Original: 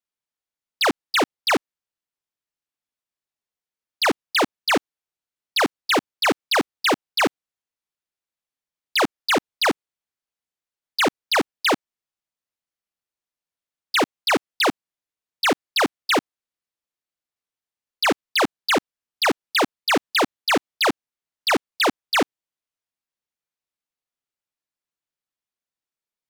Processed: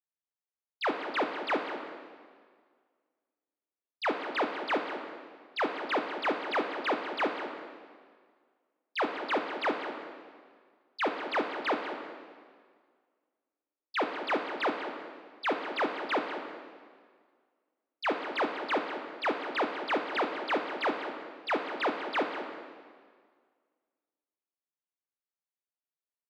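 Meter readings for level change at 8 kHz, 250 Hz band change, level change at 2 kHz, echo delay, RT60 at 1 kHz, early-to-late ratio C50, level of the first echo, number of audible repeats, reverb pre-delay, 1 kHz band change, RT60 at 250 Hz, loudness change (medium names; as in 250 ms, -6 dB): under -25 dB, -10.0 dB, -10.5 dB, 194 ms, 1.8 s, 4.5 dB, -11.5 dB, 1, 18 ms, -7.5 dB, 1.8 s, -10.5 dB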